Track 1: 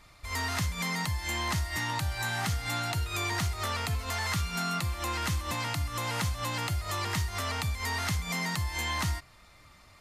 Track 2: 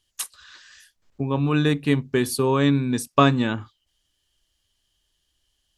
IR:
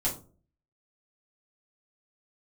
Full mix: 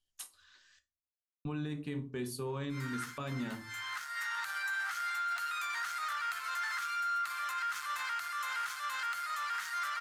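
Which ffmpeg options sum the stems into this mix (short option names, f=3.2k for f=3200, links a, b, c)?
-filter_complex "[0:a]asoftclip=type=hard:threshold=-26.5dB,highpass=f=1.4k:t=q:w=6.4,adelay=2450,volume=-3.5dB,asplit=2[a][b];[b]volume=-21dB[c];[1:a]volume=-18.5dB,asplit=3[d][e][f];[d]atrim=end=0.79,asetpts=PTS-STARTPTS,afade=t=out:st=0.786:d=0.004:c=hsin[g];[e]atrim=start=0.79:end=1.45,asetpts=PTS-STARTPTS,volume=0[h];[f]atrim=start=1.45,asetpts=PTS-STARTPTS,afade=t=in:d=0.004:c=hsin[i];[g][h][i]concat=n=3:v=0:a=1,asplit=3[j][k][l];[k]volume=-9.5dB[m];[l]apad=whole_len=549376[n];[a][n]sidechaincompress=threshold=-50dB:ratio=8:attack=11:release=740[o];[2:a]atrim=start_sample=2205[p];[c][m]amix=inputs=2:normalize=0[q];[q][p]afir=irnorm=-1:irlink=0[r];[o][j][r]amix=inputs=3:normalize=0,alimiter=level_in=5dB:limit=-24dB:level=0:latency=1:release=54,volume=-5dB"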